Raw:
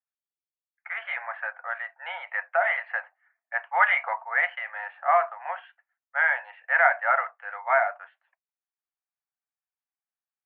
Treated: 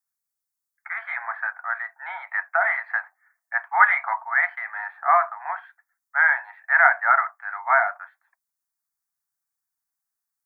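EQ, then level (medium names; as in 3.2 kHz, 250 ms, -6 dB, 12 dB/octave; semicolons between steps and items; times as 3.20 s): treble shelf 3.1 kHz +9 dB; static phaser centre 1.2 kHz, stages 4; +4.5 dB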